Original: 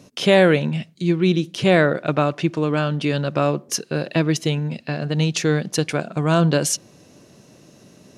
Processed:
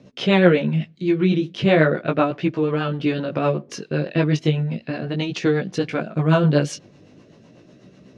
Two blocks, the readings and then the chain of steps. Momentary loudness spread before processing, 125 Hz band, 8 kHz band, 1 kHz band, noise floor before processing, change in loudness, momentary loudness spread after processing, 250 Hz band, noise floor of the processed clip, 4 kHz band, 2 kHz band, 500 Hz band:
8 LU, 0.0 dB, -13.0 dB, -1.5 dB, -51 dBFS, -0.5 dB, 10 LU, +0.5 dB, -51 dBFS, -3.5 dB, -1.5 dB, -0.5 dB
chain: LPF 3500 Hz 12 dB/oct; chorus 0.37 Hz, delay 15.5 ms, depth 5.2 ms; rotary speaker horn 8 Hz; gain +5 dB

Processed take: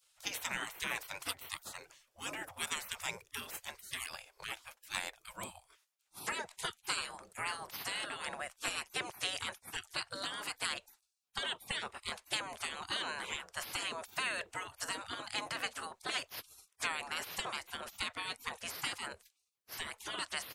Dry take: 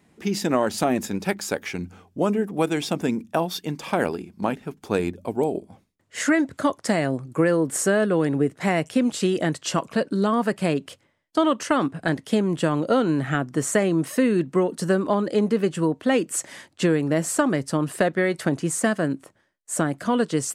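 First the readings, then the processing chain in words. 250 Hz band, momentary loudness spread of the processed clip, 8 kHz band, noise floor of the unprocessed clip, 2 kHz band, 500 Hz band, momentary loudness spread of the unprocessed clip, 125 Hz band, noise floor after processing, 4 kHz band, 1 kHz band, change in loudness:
-32.5 dB, 8 LU, -12.0 dB, -64 dBFS, -9.0 dB, -27.0 dB, 7 LU, -29.0 dB, -80 dBFS, -3.0 dB, -14.5 dB, -16.0 dB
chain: spectral gate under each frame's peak -25 dB weak; gain +2 dB

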